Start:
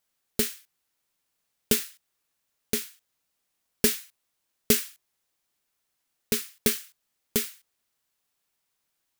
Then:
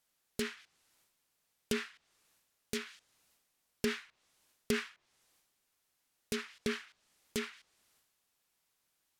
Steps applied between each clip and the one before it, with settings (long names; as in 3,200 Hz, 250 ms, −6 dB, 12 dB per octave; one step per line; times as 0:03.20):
transient designer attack −10 dB, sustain +8 dB
treble cut that deepens with the level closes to 1,800 Hz, closed at −26.5 dBFS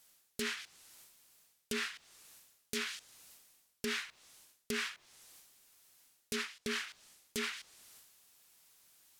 high-shelf EQ 3,500 Hz +7.5 dB
reversed playback
downward compressor 6 to 1, threshold −44 dBFS, peak gain reduction 17.5 dB
reversed playback
level +8.5 dB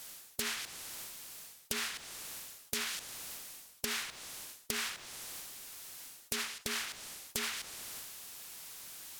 feedback echo with a high-pass in the loop 75 ms, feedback 34%, level −24 dB
every bin compressed towards the loudest bin 2 to 1
level +7 dB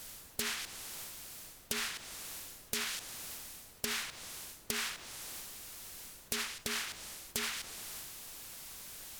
background noise pink −60 dBFS